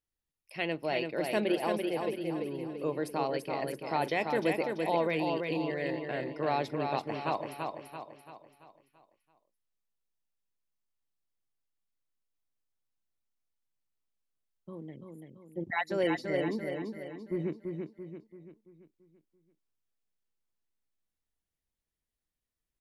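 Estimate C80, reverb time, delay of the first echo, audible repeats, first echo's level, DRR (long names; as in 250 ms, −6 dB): no reverb audible, no reverb audible, 337 ms, 5, −4.5 dB, no reverb audible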